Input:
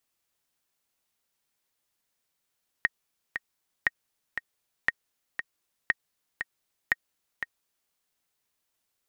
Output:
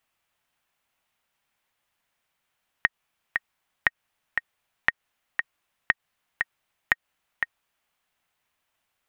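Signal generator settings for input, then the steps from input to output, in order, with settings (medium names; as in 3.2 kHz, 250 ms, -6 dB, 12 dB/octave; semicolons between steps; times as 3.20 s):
metronome 118 bpm, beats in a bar 2, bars 5, 1.87 kHz, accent 8.5 dB -9 dBFS
high-order bell 1.4 kHz +8 dB 2.7 oct; compression 3:1, threshold -19 dBFS; tone controls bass +5 dB, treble -2 dB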